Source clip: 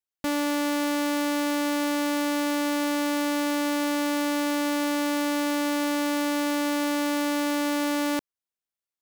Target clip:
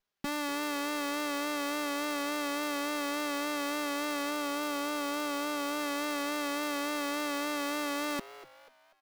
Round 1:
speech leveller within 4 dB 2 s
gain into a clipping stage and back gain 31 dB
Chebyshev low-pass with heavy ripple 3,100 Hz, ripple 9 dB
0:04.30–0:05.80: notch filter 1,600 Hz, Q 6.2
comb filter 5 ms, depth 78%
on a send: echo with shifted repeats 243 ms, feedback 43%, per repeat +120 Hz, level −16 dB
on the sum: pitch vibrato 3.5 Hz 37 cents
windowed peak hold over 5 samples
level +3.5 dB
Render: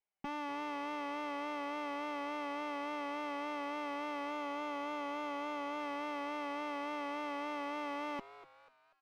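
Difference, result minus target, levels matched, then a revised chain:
4,000 Hz band −6.0 dB
speech leveller within 4 dB 2 s
gain into a clipping stage and back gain 31 dB
0:04.30–0:05.80: notch filter 1,600 Hz, Q 6.2
comb filter 5 ms, depth 78%
on a send: echo with shifted repeats 243 ms, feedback 43%, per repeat +120 Hz, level −16 dB
on the sum: pitch vibrato 3.5 Hz 37 cents
windowed peak hold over 5 samples
level +3.5 dB

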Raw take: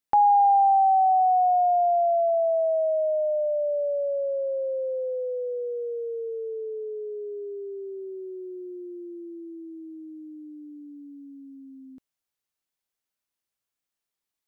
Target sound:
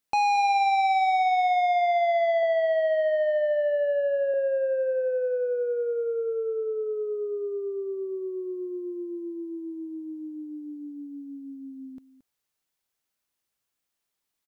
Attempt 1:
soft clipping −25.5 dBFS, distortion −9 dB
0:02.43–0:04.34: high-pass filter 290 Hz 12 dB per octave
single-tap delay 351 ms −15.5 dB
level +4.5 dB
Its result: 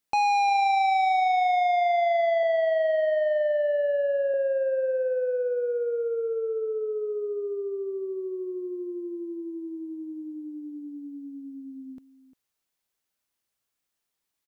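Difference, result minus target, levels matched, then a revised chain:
echo 127 ms late
soft clipping −25.5 dBFS, distortion −9 dB
0:02.43–0:04.34: high-pass filter 290 Hz 12 dB per octave
single-tap delay 224 ms −15.5 dB
level +4.5 dB

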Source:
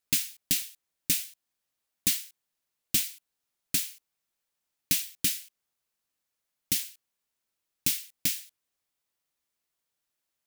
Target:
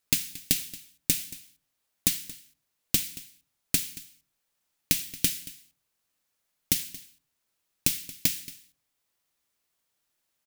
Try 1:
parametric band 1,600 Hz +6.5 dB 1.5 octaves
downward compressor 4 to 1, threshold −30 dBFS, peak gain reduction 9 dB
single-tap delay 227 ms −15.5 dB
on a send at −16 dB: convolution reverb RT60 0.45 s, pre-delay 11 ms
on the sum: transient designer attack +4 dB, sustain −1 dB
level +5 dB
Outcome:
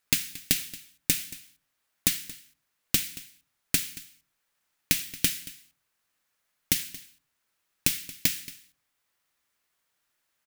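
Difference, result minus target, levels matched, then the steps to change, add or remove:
2,000 Hz band +4.0 dB
remove: parametric band 1,600 Hz +6.5 dB 1.5 octaves

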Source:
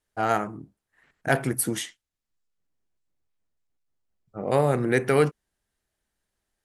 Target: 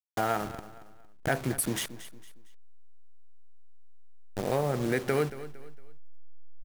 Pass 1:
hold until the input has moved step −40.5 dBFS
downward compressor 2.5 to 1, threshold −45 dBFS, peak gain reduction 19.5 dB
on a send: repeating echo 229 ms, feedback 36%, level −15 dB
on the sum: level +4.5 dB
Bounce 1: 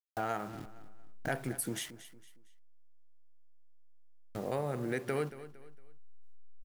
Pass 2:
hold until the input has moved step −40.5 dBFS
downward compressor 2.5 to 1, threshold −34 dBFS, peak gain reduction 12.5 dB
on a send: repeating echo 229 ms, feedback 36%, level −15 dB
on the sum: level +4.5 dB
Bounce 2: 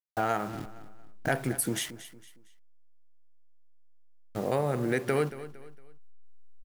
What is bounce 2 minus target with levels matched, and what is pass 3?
hold until the input has moved: distortion −9 dB
hold until the input has moved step −30.5 dBFS
downward compressor 2.5 to 1, threshold −34 dBFS, peak gain reduction 12.5 dB
on a send: repeating echo 229 ms, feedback 36%, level −15 dB
on the sum: level +4.5 dB

